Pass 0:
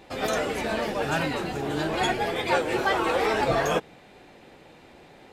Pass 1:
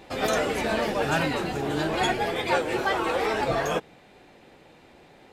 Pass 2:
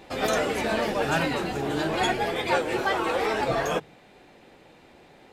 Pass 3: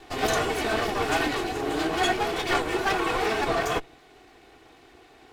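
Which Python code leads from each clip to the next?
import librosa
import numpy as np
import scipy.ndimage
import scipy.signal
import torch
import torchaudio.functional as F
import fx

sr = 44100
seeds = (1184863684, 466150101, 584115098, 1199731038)

y1 = fx.rider(x, sr, range_db=10, speed_s=2.0)
y2 = fx.hum_notches(y1, sr, base_hz=50, count=3)
y3 = fx.lower_of_two(y2, sr, delay_ms=2.7)
y3 = F.gain(torch.from_numpy(y3), 1.5).numpy()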